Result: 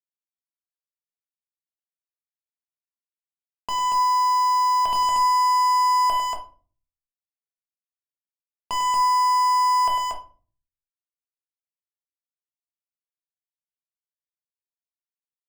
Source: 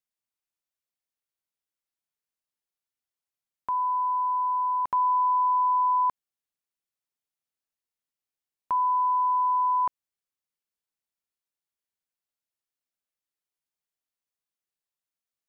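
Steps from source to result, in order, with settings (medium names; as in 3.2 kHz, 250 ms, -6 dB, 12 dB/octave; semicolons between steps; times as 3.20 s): low-pass 1.2 kHz 6 dB/octave; peaking EQ 680 Hz +6.5 dB 0.38 oct; waveshaping leveller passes 3; bit crusher 12-bit; saturation -19 dBFS, distortion -29 dB; Chebyshev shaper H 5 -24 dB, 7 -36 dB, 8 -19 dB, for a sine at -21.5 dBFS; loudspeakers at several distances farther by 34 m -8 dB, 80 m -3 dB; simulated room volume 270 m³, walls furnished, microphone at 1.6 m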